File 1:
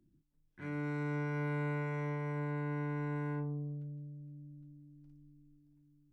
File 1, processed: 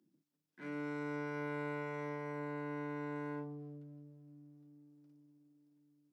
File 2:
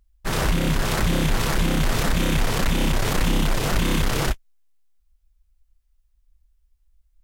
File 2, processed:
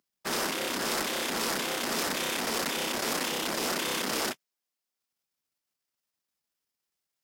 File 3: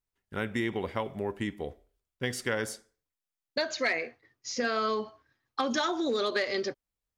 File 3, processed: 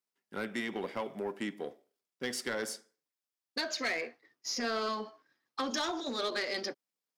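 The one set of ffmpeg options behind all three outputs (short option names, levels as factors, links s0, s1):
-filter_complex "[0:a]aeval=exprs='if(lt(val(0),0),0.708*val(0),val(0))':c=same,afftfilt=real='re*lt(hypot(re,im),0.282)':imag='im*lt(hypot(re,im),0.282)':win_size=1024:overlap=0.75,highpass=f=190:w=0.5412,highpass=f=190:w=1.3066,equalizer=f=5100:t=o:w=0.28:g=5,acrossover=split=5000[s0][s1];[s0]asoftclip=type=tanh:threshold=0.0473[s2];[s2][s1]amix=inputs=2:normalize=0"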